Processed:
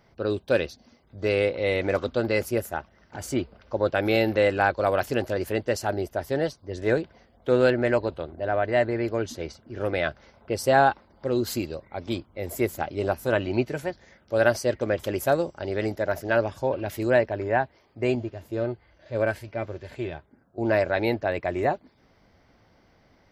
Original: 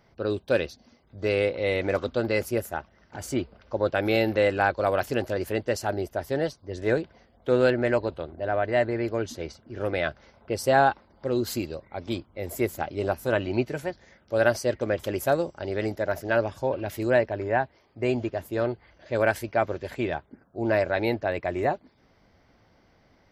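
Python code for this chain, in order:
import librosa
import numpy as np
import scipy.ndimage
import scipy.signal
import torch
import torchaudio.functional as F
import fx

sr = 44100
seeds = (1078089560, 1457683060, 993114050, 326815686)

y = fx.hpss(x, sr, part='percussive', gain_db=-13, at=(18.15, 20.58))
y = F.gain(torch.from_numpy(y), 1.0).numpy()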